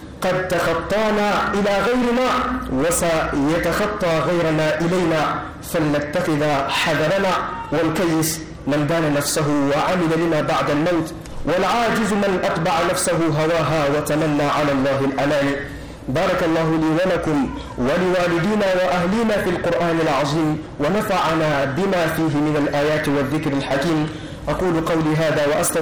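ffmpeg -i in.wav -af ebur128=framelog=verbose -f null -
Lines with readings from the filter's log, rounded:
Integrated loudness:
  I:         -19.2 LUFS
  Threshold: -29.3 LUFS
Loudness range:
  LRA:         1.1 LU
  Threshold: -39.3 LUFS
  LRA low:   -19.8 LUFS
  LRA high:  -18.7 LUFS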